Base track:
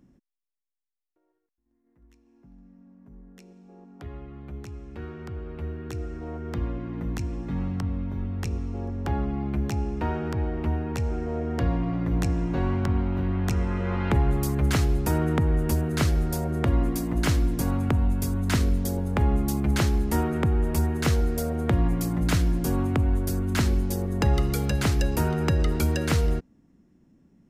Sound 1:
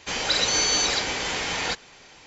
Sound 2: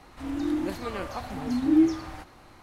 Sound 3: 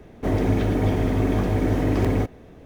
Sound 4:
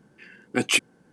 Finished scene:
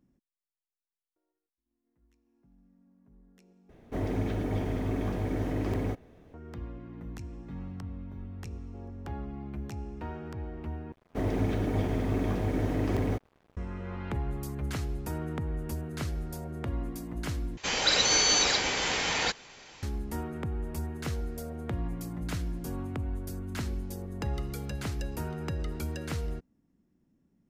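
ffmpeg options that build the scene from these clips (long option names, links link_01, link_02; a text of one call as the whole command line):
ffmpeg -i bed.wav -i cue0.wav -i cue1.wav -i cue2.wav -filter_complex "[3:a]asplit=2[link_01][link_02];[0:a]volume=-11dB[link_03];[link_02]aeval=exprs='sgn(val(0))*max(abs(val(0))-0.0075,0)':channel_layout=same[link_04];[link_03]asplit=4[link_05][link_06][link_07][link_08];[link_05]atrim=end=3.694[link_09];[link_01]atrim=end=2.65,asetpts=PTS-STARTPTS,volume=-9.5dB[link_10];[link_06]atrim=start=6.336:end=10.924[link_11];[link_04]atrim=end=2.65,asetpts=PTS-STARTPTS,volume=-7dB[link_12];[link_07]atrim=start=13.566:end=17.574[link_13];[1:a]atrim=end=2.26,asetpts=PTS-STARTPTS,volume=-1.5dB[link_14];[link_08]atrim=start=19.826[link_15];[link_09][link_10]acrossfade=duration=0.004:curve1=hsin:curve2=hsin[link_16];[link_16][link_11]acrossfade=duration=0.004:curve1=hsin:curve2=hsin[link_17];[link_17][link_12]acrossfade=duration=0.004:curve1=hsin:curve2=hsin[link_18];[link_18][link_13]acrossfade=duration=0.004:curve1=hsin:curve2=hsin[link_19];[link_19][link_14]acrossfade=duration=0.004:curve1=hsin:curve2=hsin[link_20];[link_20][link_15]acrossfade=duration=0.004:curve1=hsin:curve2=hsin" out.wav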